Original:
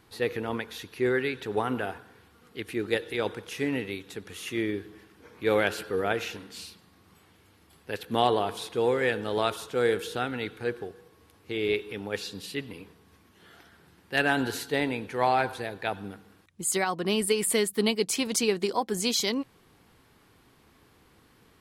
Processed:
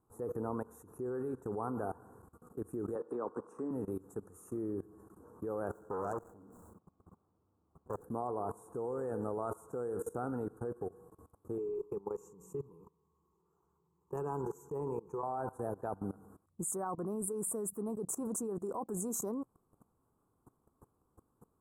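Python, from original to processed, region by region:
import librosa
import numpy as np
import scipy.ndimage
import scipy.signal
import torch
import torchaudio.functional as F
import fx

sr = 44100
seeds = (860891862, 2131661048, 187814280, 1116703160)

y = fx.chain(x, sr, fx.cabinet(low_hz=230.0, low_slope=12, high_hz=7700.0, hz=(250.0, 1100.0, 6800.0), db=(5, 7, -10)),
    fx.band_squash(depth_pct=70), at=(2.95, 3.71))
y = fx.chain(y, sr, fx.median_filter(points=15),
    fx.transformer_sat(knee_hz=2700.0), at=(5.71, 8.04))
y = fx.chain(y, sr, fx.ripple_eq(per_octave=0.75, db=16),
    fx.level_steps(step_db=16), at=(11.58, 15.23))
y = scipy.signal.sosfilt(scipy.signal.ellip(3, 1.0, 40, [1200.0, 7700.0], 'bandstop', fs=sr, output='sos'), y)
y = fx.high_shelf(y, sr, hz=7300.0, db=-4.0)
y = fx.level_steps(y, sr, step_db=20)
y = y * 10.0 ** (3.0 / 20.0)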